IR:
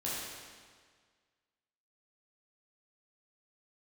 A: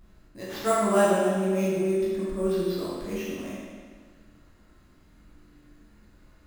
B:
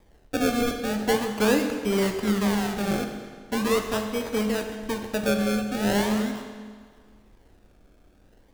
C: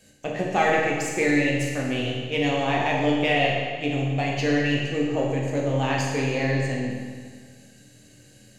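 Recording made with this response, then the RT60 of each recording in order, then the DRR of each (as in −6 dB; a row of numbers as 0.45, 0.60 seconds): A; 1.7, 1.7, 1.7 seconds; −8.0, 4.5, −3.0 decibels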